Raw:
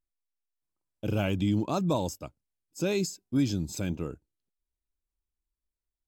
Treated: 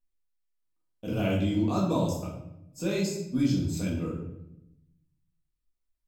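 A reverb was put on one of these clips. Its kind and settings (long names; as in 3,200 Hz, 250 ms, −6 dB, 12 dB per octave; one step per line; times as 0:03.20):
rectangular room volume 230 cubic metres, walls mixed, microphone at 1.8 metres
level −5.5 dB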